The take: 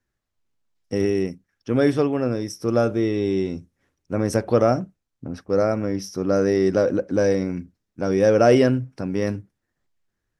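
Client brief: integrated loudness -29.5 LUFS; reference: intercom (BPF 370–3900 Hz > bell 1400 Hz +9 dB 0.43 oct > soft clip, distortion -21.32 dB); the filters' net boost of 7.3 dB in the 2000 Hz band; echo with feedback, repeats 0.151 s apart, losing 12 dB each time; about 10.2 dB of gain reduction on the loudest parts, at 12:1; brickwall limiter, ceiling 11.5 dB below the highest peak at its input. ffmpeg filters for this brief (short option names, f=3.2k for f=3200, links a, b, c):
-af "equalizer=f=2k:t=o:g=3.5,acompressor=threshold=-21dB:ratio=12,alimiter=limit=-22.5dB:level=0:latency=1,highpass=370,lowpass=3.9k,equalizer=f=1.4k:t=o:w=0.43:g=9,aecho=1:1:151|302|453:0.251|0.0628|0.0157,asoftclip=threshold=-24dB,volume=7dB"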